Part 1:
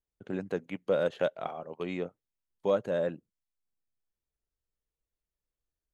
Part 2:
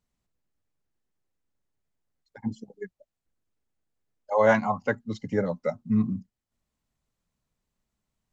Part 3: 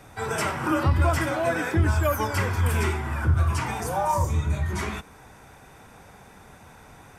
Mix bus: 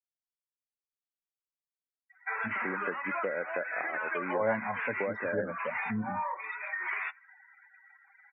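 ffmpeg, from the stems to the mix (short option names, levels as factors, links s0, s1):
-filter_complex "[0:a]highpass=f=160:w=0.5412,highpass=f=160:w=1.3066,equalizer=f=1600:t=o:w=0.25:g=14.5,adelay=2350,volume=1.33[s0];[1:a]volume=0.355,asplit=2[s1][s2];[2:a]highpass=1000,equalizer=f=2000:t=o:w=0.63:g=9.5,alimiter=limit=0.0794:level=0:latency=1:release=28,adelay=2100,volume=1[s3];[s2]apad=whole_len=409663[s4];[s3][s4]sidechaincompress=threshold=0.00891:ratio=8:attack=36:release=120[s5];[s0][s5]amix=inputs=2:normalize=0,lowpass=f=2800:w=0.5412,lowpass=f=2800:w=1.3066,acompressor=threshold=0.0355:ratio=12,volume=1[s6];[s1][s6]amix=inputs=2:normalize=0,afftdn=nr=36:nf=-42,equalizer=f=150:t=o:w=0.58:g=-7"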